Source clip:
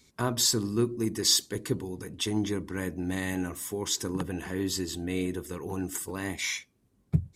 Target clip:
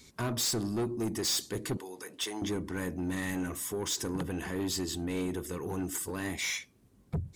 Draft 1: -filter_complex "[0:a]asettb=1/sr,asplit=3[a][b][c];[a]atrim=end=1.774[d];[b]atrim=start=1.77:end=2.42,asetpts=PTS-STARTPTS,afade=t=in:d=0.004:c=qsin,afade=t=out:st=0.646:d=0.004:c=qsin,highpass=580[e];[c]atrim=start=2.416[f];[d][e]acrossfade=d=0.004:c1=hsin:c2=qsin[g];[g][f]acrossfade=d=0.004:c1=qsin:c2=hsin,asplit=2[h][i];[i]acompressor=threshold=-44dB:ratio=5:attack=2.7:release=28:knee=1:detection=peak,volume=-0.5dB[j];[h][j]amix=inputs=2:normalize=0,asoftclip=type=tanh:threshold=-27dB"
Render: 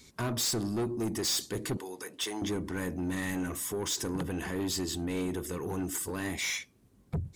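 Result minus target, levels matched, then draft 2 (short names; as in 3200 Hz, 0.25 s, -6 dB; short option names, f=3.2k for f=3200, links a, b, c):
compressor: peak gain reduction -8 dB
-filter_complex "[0:a]asettb=1/sr,asplit=3[a][b][c];[a]atrim=end=1.774[d];[b]atrim=start=1.77:end=2.42,asetpts=PTS-STARTPTS,afade=t=in:d=0.004:c=qsin,afade=t=out:st=0.646:d=0.004:c=qsin,highpass=580[e];[c]atrim=start=2.416[f];[d][e]acrossfade=d=0.004:c1=hsin:c2=qsin[g];[g][f]acrossfade=d=0.004:c1=qsin:c2=hsin,asplit=2[h][i];[i]acompressor=threshold=-54dB:ratio=5:attack=2.7:release=28:knee=1:detection=peak,volume=-0.5dB[j];[h][j]amix=inputs=2:normalize=0,asoftclip=type=tanh:threshold=-27dB"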